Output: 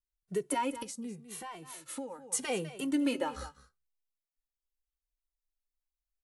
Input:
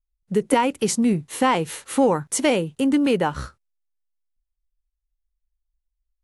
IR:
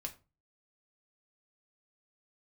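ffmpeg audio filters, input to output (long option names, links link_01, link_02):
-filter_complex "[0:a]bass=frequency=250:gain=-5,treble=frequency=4000:gain=4,aecho=1:1:201:0.141,asettb=1/sr,asplit=3[link_01][link_02][link_03];[link_01]atrim=end=0.824[link_04];[link_02]atrim=start=0.82:end=2.33,asetpts=PTS-STARTPTS,afade=type=in:duration=0.004:curve=qsin,afade=type=out:start_time=1.506:duration=0.004:curve=qsin,acompressor=threshold=-32dB:ratio=5[link_05];[link_03]atrim=start=2.326[link_06];[link_04][link_05]acrossfade=duration=0.004:curve1=hsin:curve2=qsin[link_07];[link_07][link_06]acrossfade=duration=0.004:curve1=qsin:curve2=hsin,asettb=1/sr,asplit=3[link_08][link_09][link_10];[link_08]atrim=end=2.854[link_11];[link_09]atrim=start=2.85:end=3.41,asetpts=PTS-STARTPTS,afade=type=in:duration=0.004:curve=qsin,afade=type=out:start_time=0.556:duration=0.004:curve=qsin,bandreject=frequency=260.2:width_type=h:width=4,bandreject=frequency=520.4:width_type=h:width=4,bandreject=frequency=780.6:width_type=h:width=4,bandreject=frequency=1040.8:width_type=h:width=4,bandreject=frequency=1301:width_type=h:width=4,bandreject=frequency=1561.2:width_type=h:width=4,bandreject=frequency=1821.4:width_type=h:width=4,bandreject=frequency=2081.6:width_type=h:width=4,bandreject=frequency=2341.8:width_type=h:width=4,bandreject=frequency=2602:width_type=h:width=4,bandreject=frequency=2862.2:width_type=h:width=4,bandreject=frequency=3122.4:width_type=h:width=4,bandreject=frequency=3382.6:width_type=h:width=4,bandreject=frequency=3642.8:width_type=h:width=4,bandreject=frequency=3903:width_type=h:width=4,bandreject=frequency=4163.2:width_type=h:width=4,bandreject=frequency=4423.4:width_type=h:width=4,bandreject=frequency=4683.6:width_type=h:width=4,bandreject=frequency=4943.8:width_type=h:width=4,bandreject=frequency=5204:width_type=h:width=4,bandreject=frequency=5464.2:width_type=h:width=4,bandreject=frequency=5724.4:width_type=h:width=4,bandreject=frequency=5984.6:width_type=h:width=4,bandreject=frequency=6244.8:width_type=h:width=4,bandreject=frequency=6505:width_type=h:width=4,bandreject=frequency=6765.2:width_type=h:width=4,bandreject=frequency=7025.4:width_type=h:width=4[link_12];[link_10]atrim=start=3.406[link_13];[link_11][link_12]acrossfade=duration=0.004:curve1=hsin:curve2=qsin[link_14];[link_14][link_13]acrossfade=duration=0.004:curve1=qsin:curve2=hsin,asplit=2[link_15][link_16];[link_16]highshelf=frequency=7600:gain=12[link_17];[1:a]atrim=start_sample=2205[link_18];[link_17][link_18]afir=irnorm=-1:irlink=0,volume=-16dB[link_19];[link_15][link_19]amix=inputs=2:normalize=0,alimiter=limit=-11dB:level=0:latency=1:release=187,asplit=2[link_20][link_21];[link_21]adelay=2.1,afreqshift=-0.81[link_22];[link_20][link_22]amix=inputs=2:normalize=1,volume=-7.5dB"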